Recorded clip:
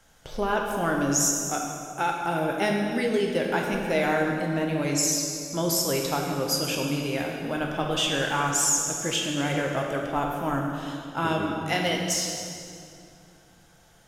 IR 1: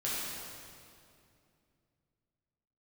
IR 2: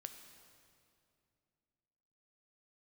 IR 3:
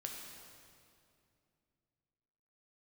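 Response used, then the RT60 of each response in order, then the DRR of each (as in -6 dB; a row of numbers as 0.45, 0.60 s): 3; 2.5, 2.5, 2.5 s; -9.0, 6.5, 0.0 dB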